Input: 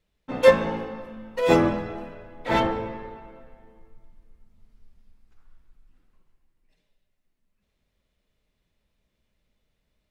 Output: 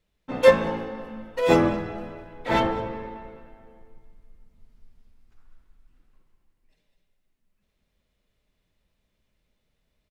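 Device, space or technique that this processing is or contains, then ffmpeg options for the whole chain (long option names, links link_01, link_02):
ducked delay: -filter_complex "[0:a]asplit=3[link_01][link_02][link_03];[link_02]adelay=203,volume=-8dB[link_04];[link_03]apad=whole_len=454452[link_05];[link_04][link_05]sidechaincompress=threshold=-34dB:ratio=8:attack=16:release=346[link_06];[link_01][link_06]amix=inputs=2:normalize=0"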